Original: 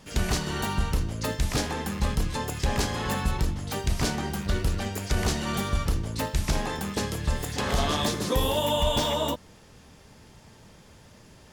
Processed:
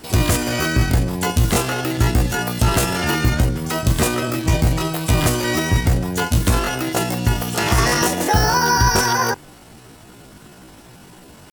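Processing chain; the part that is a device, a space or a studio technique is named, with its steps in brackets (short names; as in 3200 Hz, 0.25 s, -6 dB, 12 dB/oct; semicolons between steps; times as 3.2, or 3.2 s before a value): chipmunk voice (pitch shift +8.5 st); gain +9 dB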